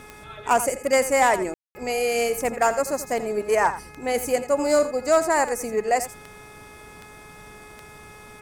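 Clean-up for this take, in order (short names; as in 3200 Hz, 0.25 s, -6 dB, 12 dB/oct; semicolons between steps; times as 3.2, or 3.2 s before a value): de-click; de-hum 422.3 Hz, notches 6; room tone fill 1.54–1.75; inverse comb 85 ms -13 dB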